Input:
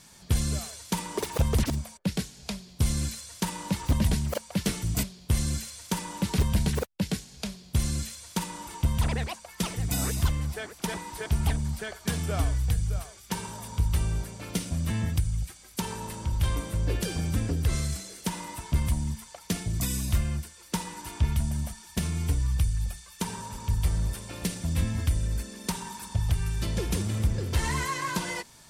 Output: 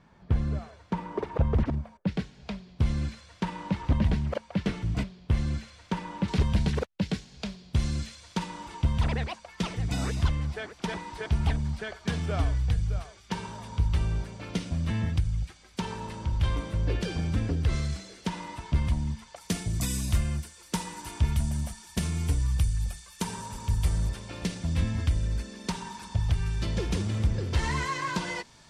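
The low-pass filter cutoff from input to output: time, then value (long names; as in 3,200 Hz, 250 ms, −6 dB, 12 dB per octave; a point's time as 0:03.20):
1,500 Hz
from 0:02.07 2,600 Hz
from 0:06.28 4,400 Hz
from 0:19.36 11,000 Hz
from 0:24.09 5,700 Hz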